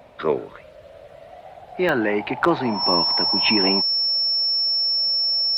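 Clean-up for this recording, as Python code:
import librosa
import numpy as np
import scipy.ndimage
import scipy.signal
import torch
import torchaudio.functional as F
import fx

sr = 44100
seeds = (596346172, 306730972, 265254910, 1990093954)

y = fx.fix_declip(x, sr, threshold_db=-7.5)
y = fx.notch(y, sr, hz=5400.0, q=30.0)
y = fx.fix_interpolate(y, sr, at_s=(1.89,), length_ms=1.3)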